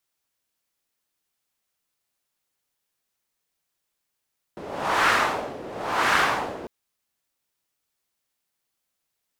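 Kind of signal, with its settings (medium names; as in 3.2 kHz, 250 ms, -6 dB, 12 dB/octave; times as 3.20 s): wind-like swept noise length 2.10 s, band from 450 Hz, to 1.4 kHz, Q 1.5, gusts 2, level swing 17 dB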